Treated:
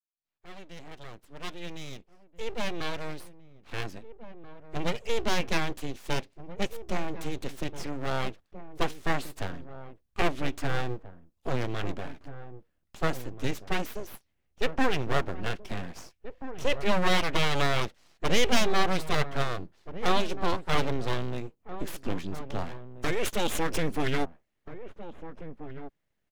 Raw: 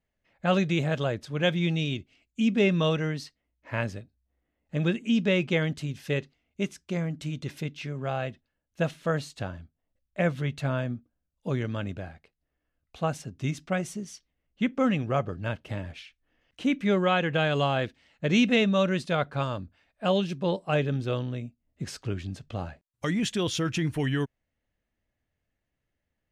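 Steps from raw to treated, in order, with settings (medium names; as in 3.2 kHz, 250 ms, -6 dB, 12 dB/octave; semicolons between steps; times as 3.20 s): fade-in on the opening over 6.68 s; full-wave rectifier; echo from a far wall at 280 m, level -12 dB; trim +2.5 dB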